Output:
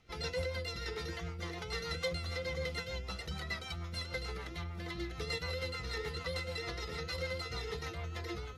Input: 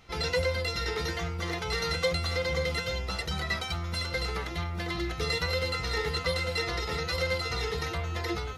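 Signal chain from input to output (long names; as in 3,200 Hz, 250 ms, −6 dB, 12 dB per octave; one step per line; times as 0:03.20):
rotating-speaker cabinet horn 6.7 Hz
level −6.5 dB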